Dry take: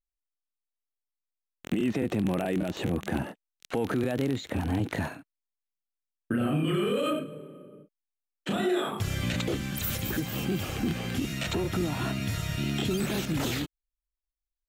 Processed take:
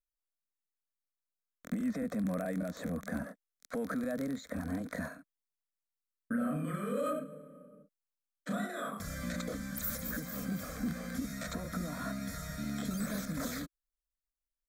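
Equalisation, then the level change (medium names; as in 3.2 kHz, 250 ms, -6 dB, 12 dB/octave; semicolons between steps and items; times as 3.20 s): peaking EQ 330 Hz -11 dB 0.21 oct; static phaser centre 570 Hz, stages 8; -3.5 dB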